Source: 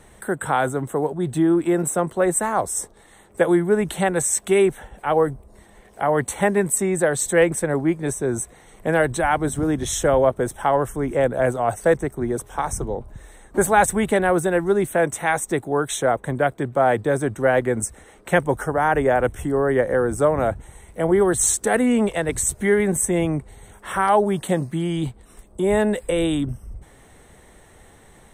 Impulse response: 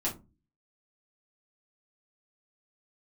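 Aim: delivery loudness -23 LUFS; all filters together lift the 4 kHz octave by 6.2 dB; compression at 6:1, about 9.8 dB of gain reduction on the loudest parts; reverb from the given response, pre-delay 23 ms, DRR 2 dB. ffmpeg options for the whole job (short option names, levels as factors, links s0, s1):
-filter_complex "[0:a]equalizer=f=4000:t=o:g=8,acompressor=threshold=0.0708:ratio=6,asplit=2[s0][s1];[1:a]atrim=start_sample=2205,adelay=23[s2];[s1][s2]afir=irnorm=-1:irlink=0,volume=0.422[s3];[s0][s3]amix=inputs=2:normalize=0,volume=1.19"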